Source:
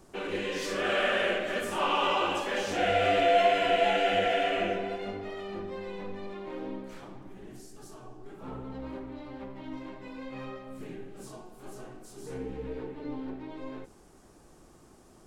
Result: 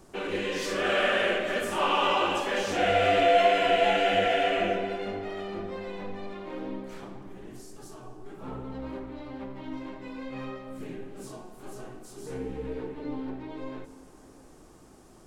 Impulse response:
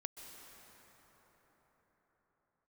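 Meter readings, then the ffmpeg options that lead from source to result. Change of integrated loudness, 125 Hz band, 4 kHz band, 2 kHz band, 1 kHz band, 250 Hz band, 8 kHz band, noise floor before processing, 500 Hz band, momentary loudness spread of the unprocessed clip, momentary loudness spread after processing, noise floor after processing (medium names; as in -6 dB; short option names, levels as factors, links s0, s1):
+2.0 dB, +2.5 dB, +2.0 dB, +2.0 dB, +2.0 dB, +2.5 dB, +2.0 dB, -56 dBFS, +2.0 dB, 22 LU, 22 LU, -53 dBFS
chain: -filter_complex "[0:a]asplit=2[s0][s1];[1:a]atrim=start_sample=2205[s2];[s1][s2]afir=irnorm=-1:irlink=0,volume=0.473[s3];[s0][s3]amix=inputs=2:normalize=0"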